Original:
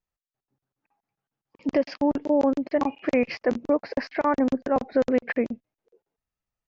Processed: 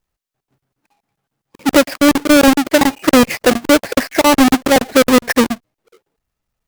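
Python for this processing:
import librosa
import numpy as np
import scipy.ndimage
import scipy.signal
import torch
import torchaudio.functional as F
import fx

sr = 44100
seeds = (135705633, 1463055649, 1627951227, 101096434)

y = fx.halfwave_hold(x, sr)
y = y * librosa.db_to_amplitude(8.5)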